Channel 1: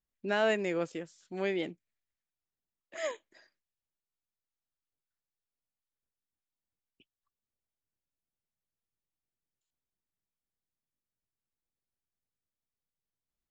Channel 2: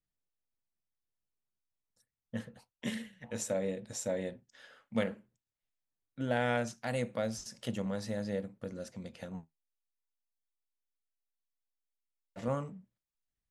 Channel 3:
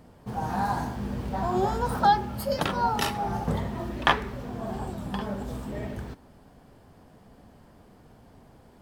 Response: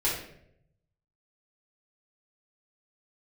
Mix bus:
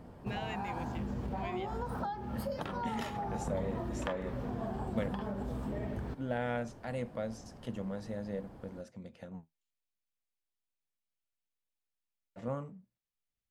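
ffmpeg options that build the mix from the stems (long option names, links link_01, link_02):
-filter_complex "[0:a]highshelf=frequency=1700:width_type=q:width=1.5:gain=11.5,volume=-10dB[link_01];[1:a]volume=-3dB[link_02];[2:a]acompressor=threshold=-32dB:ratio=3,volume=1.5dB[link_03];[link_01][link_03]amix=inputs=2:normalize=0,acompressor=threshold=-33dB:ratio=6,volume=0dB[link_04];[link_02][link_04]amix=inputs=2:normalize=0,highshelf=frequency=2500:gain=-9.5"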